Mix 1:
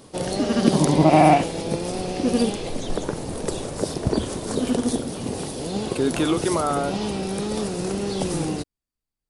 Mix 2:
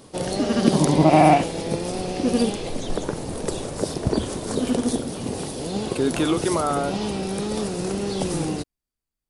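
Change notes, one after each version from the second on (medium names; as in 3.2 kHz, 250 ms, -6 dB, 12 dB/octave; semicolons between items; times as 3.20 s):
first voice: unmuted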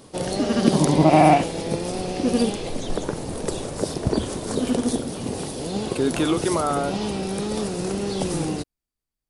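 no change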